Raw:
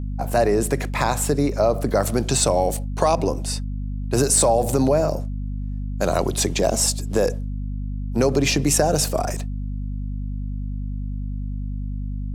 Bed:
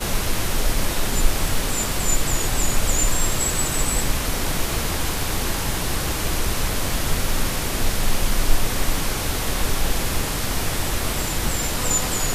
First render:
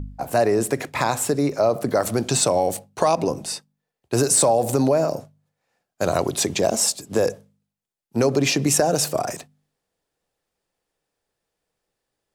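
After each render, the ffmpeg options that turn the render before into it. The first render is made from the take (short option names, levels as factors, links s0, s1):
-af "bandreject=f=50:t=h:w=4,bandreject=f=100:t=h:w=4,bandreject=f=150:t=h:w=4,bandreject=f=200:t=h:w=4,bandreject=f=250:t=h:w=4"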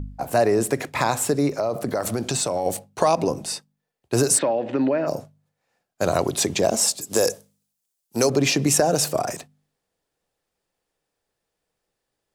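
-filter_complex "[0:a]asettb=1/sr,asplit=3[s0][s1][s2];[s0]atrim=end=1.554[s3];[s1]atrim=start=1.55:end=2.66,asetpts=PTS-STARTPTS,afade=t=in:d=0.004:c=qsin,afade=t=out:st=1.106:d=0.004:c=qsin,acompressor=threshold=0.1:ratio=4:attack=3.2:release=140:knee=1:detection=peak[s4];[s2]atrim=start=2.656[s5];[s3][s4]acrossfade=d=0.004:c1=hsin:c2=qsin[s6];[s6][s5]acrossfade=d=0.004:c1=qsin:c2=hsin,asplit=3[s7][s8][s9];[s7]afade=t=out:st=4.37:d=0.02[s10];[s8]highpass=250,equalizer=f=290:t=q:w=4:g=4,equalizer=f=450:t=q:w=4:g=-6,equalizer=f=740:t=q:w=4:g=-9,equalizer=f=1100:t=q:w=4:g=-5,equalizer=f=1800:t=q:w=4:g=8,equalizer=f=2900:t=q:w=4:g=5,lowpass=f=3000:w=0.5412,lowpass=f=3000:w=1.3066,afade=t=in:st=4.37:d=0.02,afade=t=out:st=5.06:d=0.02[s11];[s9]afade=t=in:st=5.06:d=0.02[s12];[s10][s11][s12]amix=inputs=3:normalize=0,asettb=1/sr,asplit=3[s13][s14][s15];[s13]atrim=end=7.014[s16];[s14]atrim=start=7.01:end=8.3,asetpts=PTS-STARTPTS,afade=t=in:d=0.004:c=qsin,afade=t=out:st=1.286:d=0.004:c=qsin,bass=f=250:g=-6,treble=f=4000:g=13[s17];[s15]atrim=start=8.296[s18];[s16][s17]acrossfade=d=0.004:c1=hsin:c2=qsin[s19];[s19][s18]acrossfade=d=0.004:c1=qsin:c2=hsin"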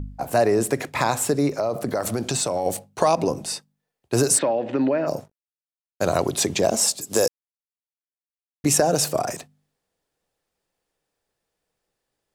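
-filter_complex "[0:a]asettb=1/sr,asplit=3[s0][s1][s2];[s0]atrim=end=5.184[s3];[s1]atrim=start=5.18:end=6.25,asetpts=PTS-STARTPTS,afade=t=in:d=0.004:c=qsin,afade=t=out:st=1.066:d=0.004:c=qsin,aeval=exprs='sgn(val(0))*max(abs(val(0))-0.00251,0)':c=same[s4];[s2]atrim=start=6.246[s5];[s3][s4]acrossfade=d=0.004:c1=hsin:c2=qsin[s6];[s6][s5]acrossfade=d=0.004:c1=qsin:c2=hsin,asplit=3[s7][s8][s9];[s7]atrim=end=7.28,asetpts=PTS-STARTPTS,afade=t=out:st=7.276:d=0.004:c=hsin[s10];[s8]atrim=start=7.28:end=8.64,asetpts=PTS-STARTPTS,volume=0[s11];[s9]atrim=start=8.64,asetpts=PTS-STARTPTS,afade=t=in:d=0.004:c=hsin[s12];[s10][s11][s12]concat=n=3:v=0:a=1"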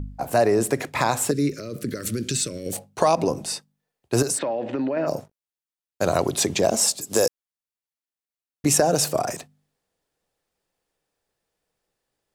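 -filter_complex "[0:a]asettb=1/sr,asplit=3[s0][s1][s2];[s0]atrim=end=1.314[s3];[s1]atrim=start=1.31:end=2.73,asetpts=PTS-STARTPTS,afade=t=in:d=0.004:c=qsin,afade=t=out:st=1.416:d=0.004:c=qsin,asuperstop=centerf=820:order=4:qfactor=0.64[s4];[s2]atrim=start=2.726[s5];[s3][s4]acrossfade=d=0.004:c1=hsin:c2=qsin[s6];[s6][s5]acrossfade=d=0.004:c1=qsin:c2=hsin,asettb=1/sr,asplit=3[s7][s8][s9];[s7]atrim=end=4.224[s10];[s8]atrim=start=4.22:end=4.97,asetpts=PTS-STARTPTS,afade=t=in:d=0.004:c=qsin,afade=t=out:st=0.746:d=0.004:c=qsin,acompressor=threshold=0.0891:ratio=6:attack=3.2:release=140:knee=1:detection=peak[s11];[s9]atrim=start=4.966[s12];[s10][s11]acrossfade=d=0.004:c1=hsin:c2=qsin[s13];[s13][s12]acrossfade=d=0.004:c1=qsin:c2=hsin"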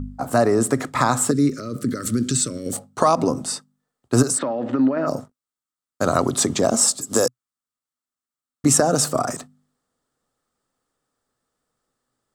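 -af "equalizer=f=125:t=o:w=0.33:g=6,equalizer=f=250:t=o:w=0.33:g=11,equalizer=f=1250:t=o:w=0.33:g=12,equalizer=f=2500:t=o:w=0.33:g=-7,equalizer=f=8000:t=o:w=0.33:g=6,equalizer=f=12500:t=o:w=0.33:g=-5"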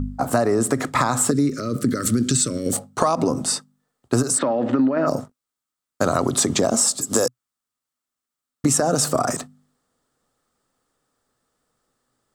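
-filter_complex "[0:a]asplit=2[s0][s1];[s1]alimiter=limit=0.282:level=0:latency=1:release=39,volume=0.708[s2];[s0][s2]amix=inputs=2:normalize=0,acompressor=threshold=0.178:ratio=6"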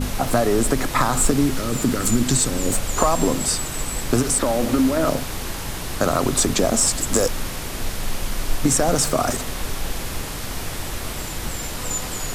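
-filter_complex "[1:a]volume=0.562[s0];[0:a][s0]amix=inputs=2:normalize=0"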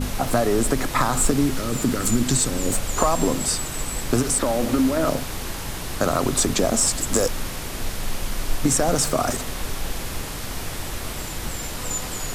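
-af "volume=0.841"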